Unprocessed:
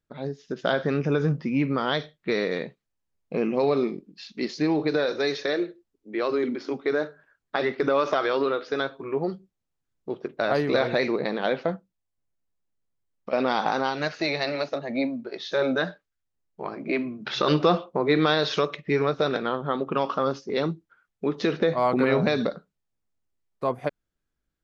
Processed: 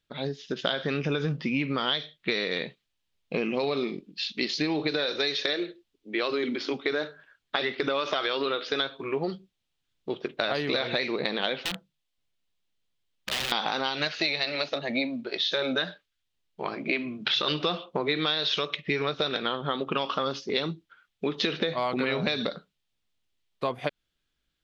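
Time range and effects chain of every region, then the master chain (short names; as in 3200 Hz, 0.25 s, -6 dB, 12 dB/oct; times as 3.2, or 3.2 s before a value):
11.65–13.52 notches 50/100/150 Hz + compressor 3:1, threshold -29 dBFS + wrapped overs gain 29.5 dB
whole clip: bell 3300 Hz +15 dB 1.3 oct; compressor 6:1, threshold -24 dBFS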